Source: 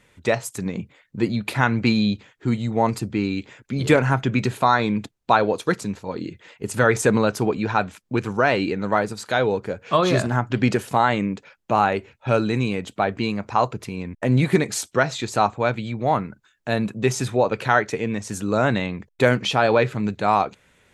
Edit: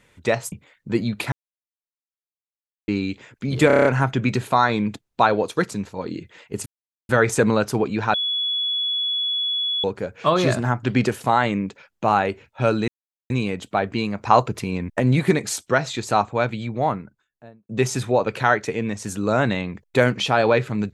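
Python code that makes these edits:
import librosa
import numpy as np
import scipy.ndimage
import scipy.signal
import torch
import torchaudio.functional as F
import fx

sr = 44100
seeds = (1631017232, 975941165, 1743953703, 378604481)

y = fx.studio_fade_out(x, sr, start_s=15.88, length_s=1.06)
y = fx.edit(y, sr, fx.cut(start_s=0.52, length_s=0.28),
    fx.silence(start_s=1.6, length_s=1.56),
    fx.stutter(start_s=3.95, slice_s=0.03, count=7),
    fx.insert_silence(at_s=6.76, length_s=0.43),
    fx.bleep(start_s=7.81, length_s=1.7, hz=3390.0, db=-20.5),
    fx.insert_silence(at_s=12.55, length_s=0.42),
    fx.clip_gain(start_s=13.5, length_s=0.75, db=4.5), tone=tone)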